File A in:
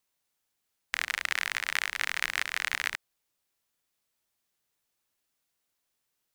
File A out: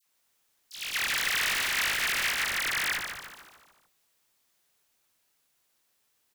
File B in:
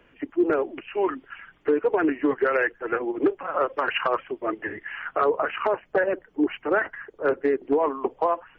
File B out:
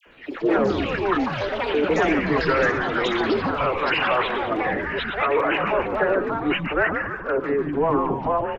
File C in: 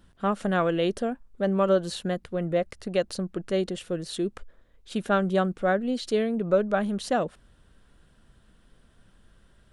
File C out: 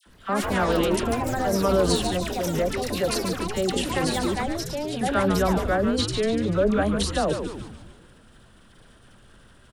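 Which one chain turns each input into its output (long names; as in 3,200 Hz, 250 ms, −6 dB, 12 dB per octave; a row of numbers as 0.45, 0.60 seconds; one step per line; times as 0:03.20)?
low-shelf EQ 210 Hz −5.5 dB
transient designer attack −3 dB, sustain +10 dB
in parallel at +1 dB: downward compressor, threshold −39 dBFS
on the sum: all-pass dispersion lows, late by 63 ms, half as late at 1,400 Hz
echo with shifted repeats 147 ms, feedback 50%, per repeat −130 Hz, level −6.5 dB
delay with pitch and tempo change per echo 104 ms, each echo +5 semitones, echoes 3, each echo −6 dB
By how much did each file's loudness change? +3.0, +3.0, +3.0 LU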